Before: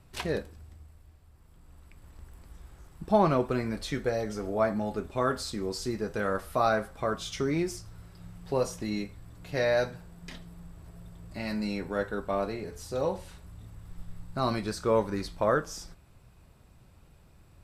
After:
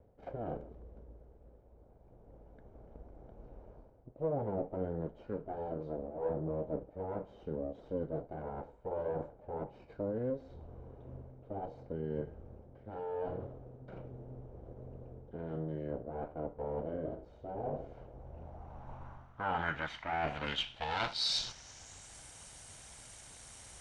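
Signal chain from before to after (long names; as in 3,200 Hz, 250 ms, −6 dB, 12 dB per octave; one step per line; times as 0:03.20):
lower of the sound and its delayed copy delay 0.97 ms
spectral tilt +3 dB per octave
reversed playback
downward compressor 4 to 1, threshold −44 dBFS, peak gain reduction 18.5 dB
reversed playback
low-pass filter sweep 640 Hz → 12,000 Hz, 0:13.31–0:16.46
wrong playback speed 45 rpm record played at 33 rpm
level +7.5 dB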